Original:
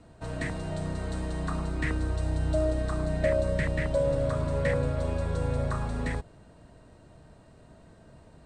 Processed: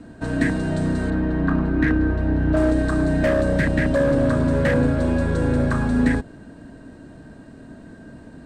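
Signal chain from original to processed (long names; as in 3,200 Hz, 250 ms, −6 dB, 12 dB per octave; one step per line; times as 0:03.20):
0:01.10–0:02.57: low-pass filter 2,200 Hz 12 dB per octave
gain into a clipping stage and back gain 23.5 dB
hollow resonant body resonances 260/1,600 Hz, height 14 dB, ringing for 30 ms
level +6 dB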